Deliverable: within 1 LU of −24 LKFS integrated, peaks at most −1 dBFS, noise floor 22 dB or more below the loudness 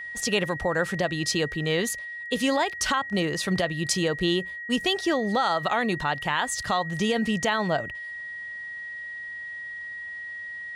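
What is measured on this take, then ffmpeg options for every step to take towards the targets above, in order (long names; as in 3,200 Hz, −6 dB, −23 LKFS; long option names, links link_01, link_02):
interfering tone 1,900 Hz; level of the tone −34 dBFS; integrated loudness −27.0 LKFS; sample peak −11.0 dBFS; target loudness −24.0 LKFS
→ -af "bandreject=frequency=1900:width=30"
-af "volume=3dB"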